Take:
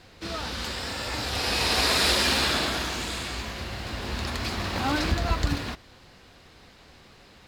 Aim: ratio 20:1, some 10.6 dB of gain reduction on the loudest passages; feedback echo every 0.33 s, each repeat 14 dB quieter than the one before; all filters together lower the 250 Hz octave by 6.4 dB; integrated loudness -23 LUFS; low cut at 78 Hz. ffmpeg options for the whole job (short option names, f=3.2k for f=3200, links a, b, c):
-af "highpass=78,equalizer=f=250:t=o:g=-8.5,acompressor=threshold=-30dB:ratio=20,aecho=1:1:330|660:0.2|0.0399,volume=10dB"